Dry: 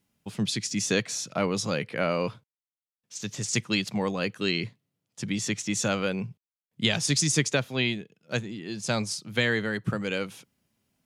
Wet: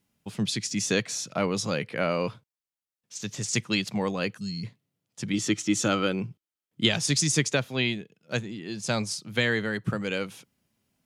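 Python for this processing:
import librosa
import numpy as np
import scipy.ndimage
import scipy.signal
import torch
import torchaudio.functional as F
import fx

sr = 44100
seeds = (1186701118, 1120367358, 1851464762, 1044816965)

y = fx.spec_box(x, sr, start_s=4.38, length_s=0.26, low_hz=240.0, high_hz=4200.0, gain_db=-24)
y = fx.small_body(y, sr, hz=(320.0, 1300.0, 3100.0), ring_ms=45, db=10, at=(5.33, 6.89))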